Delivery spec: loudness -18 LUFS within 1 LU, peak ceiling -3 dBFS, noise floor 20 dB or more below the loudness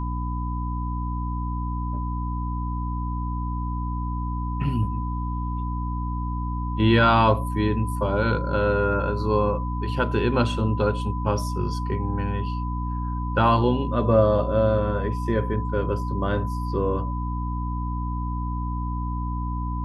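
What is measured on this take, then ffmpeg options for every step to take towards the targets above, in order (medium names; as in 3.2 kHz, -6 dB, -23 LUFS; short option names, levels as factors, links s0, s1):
hum 60 Hz; highest harmonic 300 Hz; hum level -25 dBFS; steady tone 1 kHz; tone level -33 dBFS; loudness -25.0 LUFS; peak level -5.5 dBFS; loudness target -18.0 LUFS
-> -af "bandreject=f=60:t=h:w=4,bandreject=f=120:t=h:w=4,bandreject=f=180:t=h:w=4,bandreject=f=240:t=h:w=4,bandreject=f=300:t=h:w=4"
-af "bandreject=f=1000:w=30"
-af "volume=2.24,alimiter=limit=0.708:level=0:latency=1"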